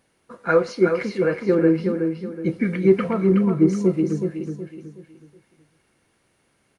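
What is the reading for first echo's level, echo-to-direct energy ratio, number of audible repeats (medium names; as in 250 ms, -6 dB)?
-6.0 dB, -5.5 dB, 4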